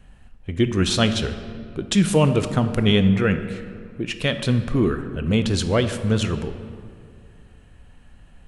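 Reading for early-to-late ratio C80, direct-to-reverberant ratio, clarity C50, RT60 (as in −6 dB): 11.0 dB, 9.0 dB, 10.0 dB, 2.3 s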